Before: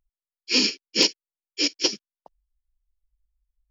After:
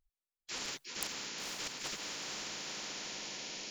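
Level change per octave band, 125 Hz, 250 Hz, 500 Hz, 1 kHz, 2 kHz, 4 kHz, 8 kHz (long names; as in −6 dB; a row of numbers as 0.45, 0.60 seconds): can't be measured, −20.0 dB, −16.0 dB, −3.0 dB, −11.0 dB, −15.5 dB, −8.5 dB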